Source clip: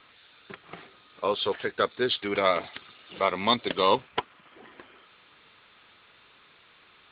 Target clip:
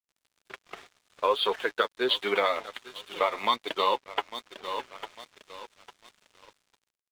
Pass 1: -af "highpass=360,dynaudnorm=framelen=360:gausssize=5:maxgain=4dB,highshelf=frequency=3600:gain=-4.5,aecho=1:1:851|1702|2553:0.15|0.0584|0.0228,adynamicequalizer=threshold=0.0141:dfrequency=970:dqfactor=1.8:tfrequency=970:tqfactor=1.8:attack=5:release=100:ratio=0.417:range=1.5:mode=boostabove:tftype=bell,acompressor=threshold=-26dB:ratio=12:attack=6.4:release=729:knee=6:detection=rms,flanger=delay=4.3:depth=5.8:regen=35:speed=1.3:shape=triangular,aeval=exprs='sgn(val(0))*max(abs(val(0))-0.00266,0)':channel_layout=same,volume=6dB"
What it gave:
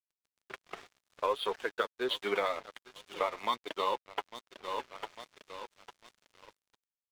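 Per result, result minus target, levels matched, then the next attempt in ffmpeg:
downward compressor: peak gain reduction +5 dB; 4,000 Hz band −2.0 dB
-af "highpass=360,dynaudnorm=framelen=360:gausssize=5:maxgain=4dB,highshelf=frequency=3600:gain=-4.5,aecho=1:1:851|1702|2553:0.15|0.0584|0.0228,adynamicequalizer=threshold=0.0141:dfrequency=970:dqfactor=1.8:tfrequency=970:tqfactor=1.8:attack=5:release=100:ratio=0.417:range=1.5:mode=boostabove:tftype=bell,acompressor=threshold=-19.5dB:ratio=12:attack=6.4:release=729:knee=6:detection=rms,flanger=delay=4.3:depth=5.8:regen=35:speed=1.3:shape=triangular,aeval=exprs='sgn(val(0))*max(abs(val(0))-0.00266,0)':channel_layout=same,volume=6dB"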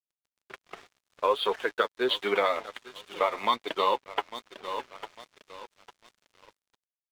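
4,000 Hz band −2.5 dB
-af "highpass=360,dynaudnorm=framelen=360:gausssize=5:maxgain=4dB,highshelf=frequency=3600:gain=3,aecho=1:1:851|1702|2553:0.15|0.0584|0.0228,adynamicequalizer=threshold=0.0141:dfrequency=970:dqfactor=1.8:tfrequency=970:tqfactor=1.8:attack=5:release=100:ratio=0.417:range=1.5:mode=boostabove:tftype=bell,acompressor=threshold=-19.5dB:ratio=12:attack=6.4:release=729:knee=6:detection=rms,flanger=delay=4.3:depth=5.8:regen=35:speed=1.3:shape=triangular,aeval=exprs='sgn(val(0))*max(abs(val(0))-0.00266,0)':channel_layout=same,volume=6dB"

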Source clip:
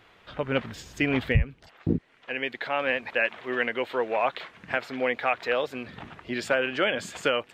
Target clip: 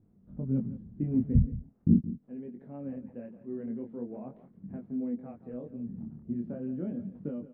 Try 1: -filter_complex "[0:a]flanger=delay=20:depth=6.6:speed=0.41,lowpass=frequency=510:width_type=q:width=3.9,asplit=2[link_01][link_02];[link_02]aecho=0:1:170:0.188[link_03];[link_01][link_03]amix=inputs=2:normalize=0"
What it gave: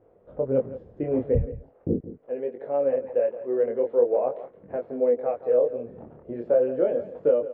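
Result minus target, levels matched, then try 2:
500 Hz band +14.5 dB
-filter_complex "[0:a]flanger=delay=20:depth=6.6:speed=0.41,lowpass=frequency=210:width_type=q:width=3.9,asplit=2[link_01][link_02];[link_02]aecho=0:1:170:0.188[link_03];[link_01][link_03]amix=inputs=2:normalize=0"

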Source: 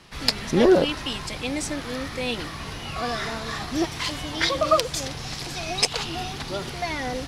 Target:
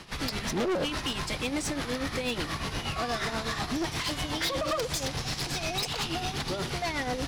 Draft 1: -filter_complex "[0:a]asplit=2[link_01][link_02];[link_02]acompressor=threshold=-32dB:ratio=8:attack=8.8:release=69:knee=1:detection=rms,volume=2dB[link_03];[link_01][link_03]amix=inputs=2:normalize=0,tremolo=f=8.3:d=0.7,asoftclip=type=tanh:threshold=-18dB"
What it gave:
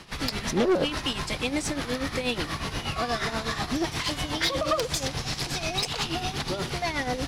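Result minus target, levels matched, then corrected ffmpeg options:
soft clipping: distortion −5 dB
-filter_complex "[0:a]asplit=2[link_01][link_02];[link_02]acompressor=threshold=-32dB:ratio=8:attack=8.8:release=69:knee=1:detection=rms,volume=2dB[link_03];[link_01][link_03]amix=inputs=2:normalize=0,tremolo=f=8.3:d=0.7,asoftclip=type=tanh:threshold=-25.5dB"

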